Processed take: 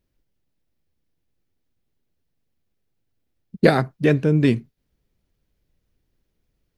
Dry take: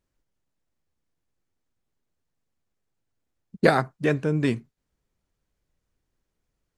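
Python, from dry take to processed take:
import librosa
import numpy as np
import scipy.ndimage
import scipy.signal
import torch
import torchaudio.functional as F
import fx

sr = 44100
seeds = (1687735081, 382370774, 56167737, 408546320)

p1 = fx.peak_eq(x, sr, hz=7600.0, db=-9.0, octaves=0.86)
p2 = fx.rider(p1, sr, range_db=10, speed_s=0.5)
p3 = p1 + (p2 * librosa.db_to_amplitude(-2.0))
p4 = fx.peak_eq(p3, sr, hz=1100.0, db=-8.0, octaves=1.7)
y = p4 * librosa.db_to_amplitude(2.0)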